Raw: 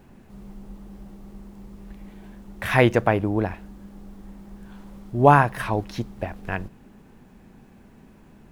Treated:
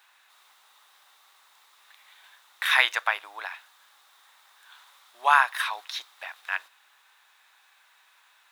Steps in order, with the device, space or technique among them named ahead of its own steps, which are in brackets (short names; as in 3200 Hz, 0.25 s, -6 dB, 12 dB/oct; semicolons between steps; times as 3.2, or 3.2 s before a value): headphones lying on a table (HPF 1100 Hz 24 dB/oct; bell 3700 Hz +11 dB 0.25 oct); gain +3 dB